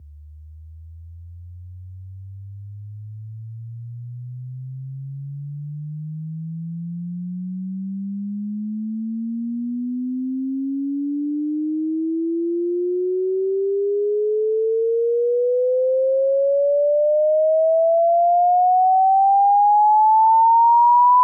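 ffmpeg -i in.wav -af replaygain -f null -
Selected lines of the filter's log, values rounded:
track_gain = -0.8 dB
track_peak = 0.240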